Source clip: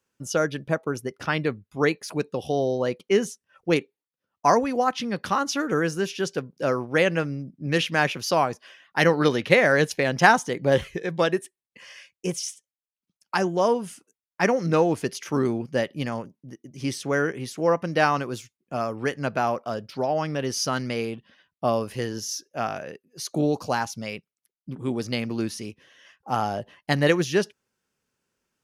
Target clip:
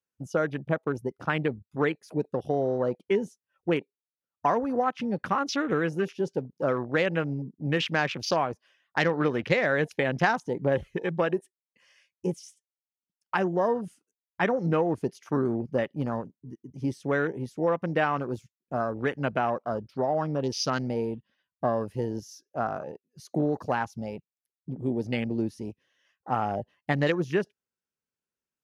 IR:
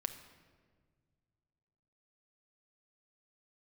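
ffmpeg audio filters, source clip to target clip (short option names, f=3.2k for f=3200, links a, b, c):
-af "afwtdn=0.0224,acompressor=threshold=-22dB:ratio=3"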